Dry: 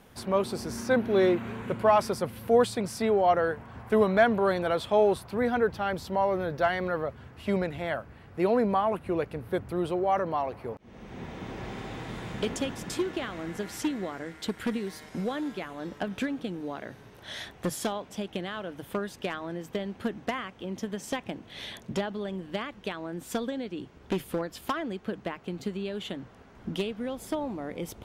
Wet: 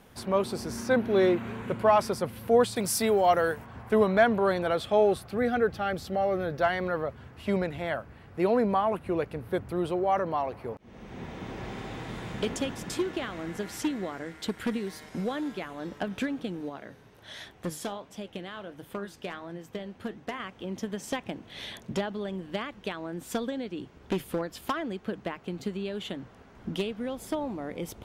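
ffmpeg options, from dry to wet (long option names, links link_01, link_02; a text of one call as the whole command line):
ffmpeg -i in.wav -filter_complex "[0:a]asettb=1/sr,asplit=3[link_01][link_02][link_03];[link_01]atrim=end=2.764[link_04];[link_02]atrim=start=2.76:end=3.65,asetpts=PTS-STARTPTS,afade=type=in:duration=0.004:curve=qsin,afade=type=out:start_time=0.886:duration=0.004:curve=qsin,aemphasis=mode=production:type=75kf[link_05];[link_03]atrim=start=3.646[link_06];[link_04][link_05]acrossfade=duration=0.004:curve1=hsin:curve2=qsin[link_07];[link_07][link_06]acrossfade=duration=0.004:curve1=qsin:curve2=hsin,asettb=1/sr,asplit=3[link_08][link_09][link_10];[link_08]atrim=end=4.734[link_11];[link_09]atrim=start=4.73:end=6.6,asetpts=PTS-STARTPTS,afade=type=in:duration=0.004:curve=qsin,afade=type=out:start_time=1.866:duration=0.004:curve=qsin,asuperstop=centerf=960:order=4:qfactor=6.1[link_12];[link_10]atrim=start=6.596[link_13];[link_11][link_12]acrossfade=duration=0.004:curve1=hsin:curve2=qsin[link_14];[link_14][link_13]acrossfade=duration=0.004:curve1=qsin:curve2=hsin,asettb=1/sr,asplit=3[link_15][link_16][link_17];[link_15]atrim=end=16.694[link_18];[link_16]atrim=start=16.69:end=20.4,asetpts=PTS-STARTPTS,afade=type=in:duration=0.004:curve=qsin,afade=type=out:start_time=3.706:duration=0.004:curve=qsin,flanger=delay=5.9:depth=7.6:regen=75:speed=1.4:shape=triangular[link_19];[link_17]atrim=start=20.396[link_20];[link_18][link_19]acrossfade=duration=0.004:curve1=hsin:curve2=qsin[link_21];[link_21][link_20]acrossfade=duration=0.004:curve1=qsin:curve2=hsin" out.wav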